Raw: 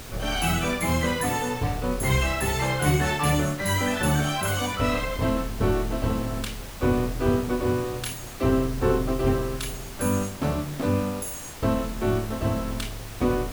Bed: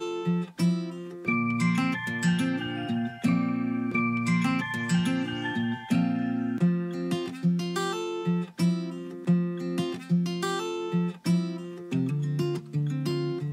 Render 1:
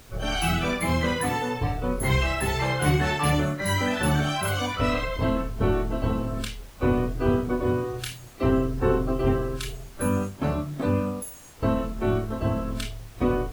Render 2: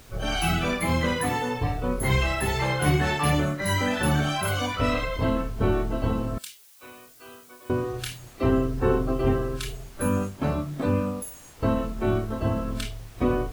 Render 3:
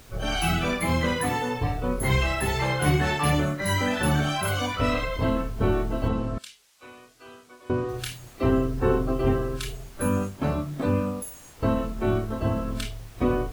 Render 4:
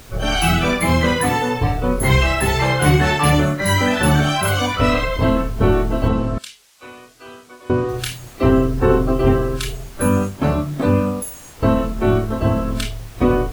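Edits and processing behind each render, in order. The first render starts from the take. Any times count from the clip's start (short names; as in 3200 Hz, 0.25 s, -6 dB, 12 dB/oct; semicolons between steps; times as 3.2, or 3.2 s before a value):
noise print and reduce 10 dB
6.38–7.7 differentiator
6.08–7.89 air absorption 55 m
gain +8 dB; limiter -3 dBFS, peak gain reduction 1.5 dB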